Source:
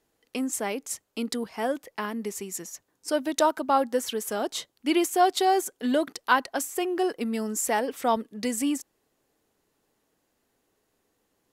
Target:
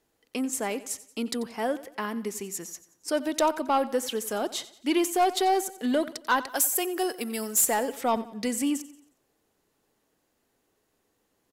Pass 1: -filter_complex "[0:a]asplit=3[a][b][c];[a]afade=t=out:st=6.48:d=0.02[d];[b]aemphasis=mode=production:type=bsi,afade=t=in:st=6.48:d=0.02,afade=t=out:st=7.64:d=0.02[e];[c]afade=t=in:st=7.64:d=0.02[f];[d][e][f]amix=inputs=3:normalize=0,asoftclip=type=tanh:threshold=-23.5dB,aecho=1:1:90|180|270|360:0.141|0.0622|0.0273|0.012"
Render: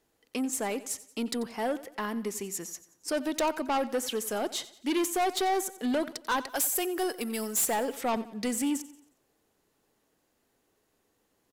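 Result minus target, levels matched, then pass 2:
soft clip: distortion +8 dB
-filter_complex "[0:a]asplit=3[a][b][c];[a]afade=t=out:st=6.48:d=0.02[d];[b]aemphasis=mode=production:type=bsi,afade=t=in:st=6.48:d=0.02,afade=t=out:st=7.64:d=0.02[e];[c]afade=t=in:st=7.64:d=0.02[f];[d][e][f]amix=inputs=3:normalize=0,asoftclip=type=tanh:threshold=-15dB,aecho=1:1:90|180|270|360:0.141|0.0622|0.0273|0.012"

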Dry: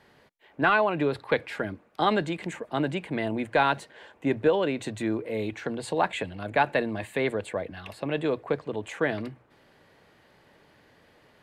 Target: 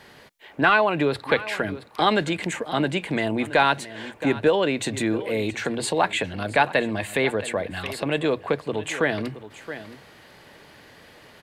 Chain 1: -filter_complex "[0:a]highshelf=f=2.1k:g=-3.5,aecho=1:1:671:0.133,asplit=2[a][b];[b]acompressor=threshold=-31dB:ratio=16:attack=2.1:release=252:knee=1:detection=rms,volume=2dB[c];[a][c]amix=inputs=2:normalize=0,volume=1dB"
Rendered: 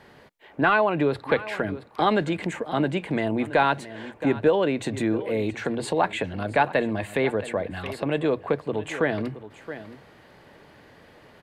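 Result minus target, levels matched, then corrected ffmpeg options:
4000 Hz band -5.5 dB
-filter_complex "[0:a]highshelf=f=2.1k:g=6.5,aecho=1:1:671:0.133,asplit=2[a][b];[b]acompressor=threshold=-31dB:ratio=16:attack=2.1:release=252:knee=1:detection=rms,volume=2dB[c];[a][c]amix=inputs=2:normalize=0,volume=1dB"

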